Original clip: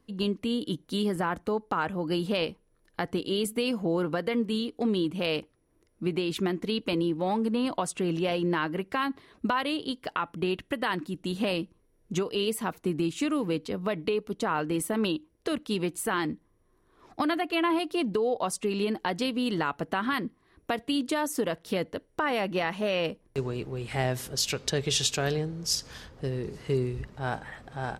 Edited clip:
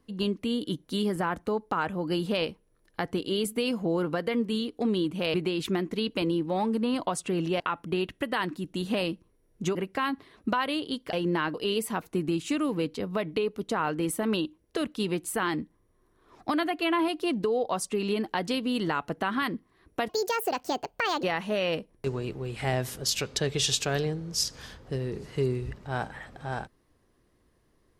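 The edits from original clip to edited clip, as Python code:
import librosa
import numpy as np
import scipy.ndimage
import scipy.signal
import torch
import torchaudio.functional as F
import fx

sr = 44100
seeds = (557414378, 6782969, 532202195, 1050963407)

y = fx.edit(x, sr, fx.cut(start_s=5.34, length_s=0.71),
    fx.swap(start_s=8.31, length_s=0.41, other_s=10.1, other_length_s=2.15),
    fx.speed_span(start_s=20.8, length_s=1.75, speed=1.53), tone=tone)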